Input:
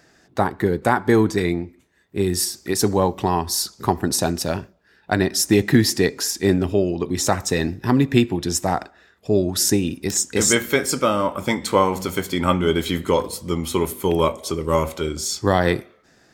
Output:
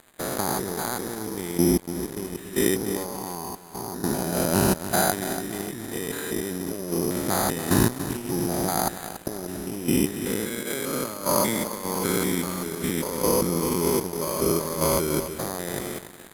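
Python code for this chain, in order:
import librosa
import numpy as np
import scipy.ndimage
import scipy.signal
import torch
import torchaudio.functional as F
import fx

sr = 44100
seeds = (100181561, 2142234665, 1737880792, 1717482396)

y = fx.spec_steps(x, sr, hold_ms=200)
y = fx.peak_eq(y, sr, hz=86.0, db=-12.0, octaves=0.55)
y = fx.over_compress(y, sr, threshold_db=-34.0, ratio=-1.0)
y = fx.echo_feedback(y, sr, ms=286, feedback_pct=46, wet_db=-10)
y = np.sign(y) * np.maximum(np.abs(y) - 10.0 ** (-44.5 / 20.0), 0.0)
y = fx.level_steps(y, sr, step_db=21, at=(3.06, 4.04))
y = np.repeat(scipy.signal.resample_poly(y, 1, 8), 8)[:len(y)]
y = fx.peak_eq(y, sr, hz=11000.0, db=15.0, octaves=0.8)
y = fx.band_widen(y, sr, depth_pct=70, at=(10.63, 11.92))
y = F.gain(torch.from_numpy(y), 8.5).numpy()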